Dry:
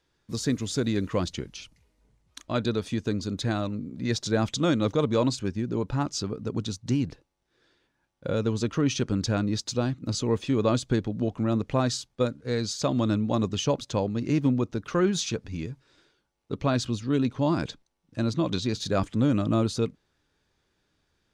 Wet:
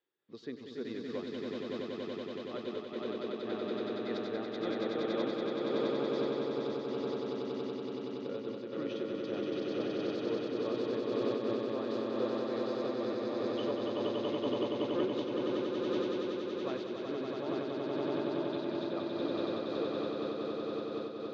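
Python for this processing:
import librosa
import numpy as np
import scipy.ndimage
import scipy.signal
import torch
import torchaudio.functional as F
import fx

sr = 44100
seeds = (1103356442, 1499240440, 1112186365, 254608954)

y = fx.cabinet(x, sr, low_hz=360.0, low_slope=12, high_hz=3300.0, hz=(380.0, 670.0, 980.0, 1500.0, 2400.0), db=(5, -4, -6, -6, -5))
y = fx.echo_swell(y, sr, ms=94, loudest=8, wet_db=-3.0)
y = fx.am_noise(y, sr, seeds[0], hz=5.7, depth_pct=55)
y = F.gain(torch.from_numpy(y), -9.0).numpy()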